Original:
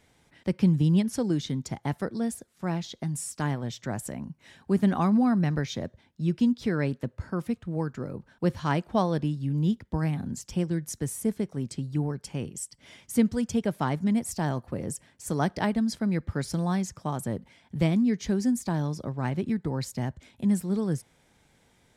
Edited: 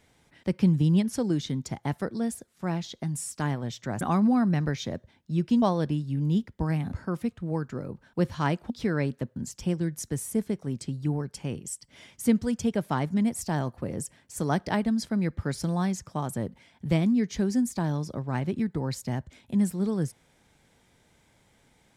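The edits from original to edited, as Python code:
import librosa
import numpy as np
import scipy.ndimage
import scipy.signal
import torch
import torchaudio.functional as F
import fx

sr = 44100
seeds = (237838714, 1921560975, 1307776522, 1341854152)

y = fx.edit(x, sr, fx.cut(start_s=4.01, length_s=0.9),
    fx.swap(start_s=6.52, length_s=0.66, other_s=8.95, other_length_s=1.31), tone=tone)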